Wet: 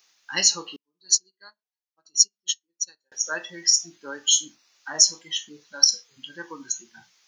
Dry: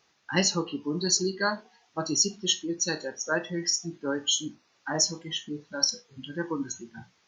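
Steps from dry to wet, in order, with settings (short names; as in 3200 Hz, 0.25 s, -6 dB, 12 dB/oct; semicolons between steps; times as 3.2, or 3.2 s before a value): tilt +4.5 dB/oct; 0.76–3.12 upward expander 2.5:1, over -36 dBFS; gain -3 dB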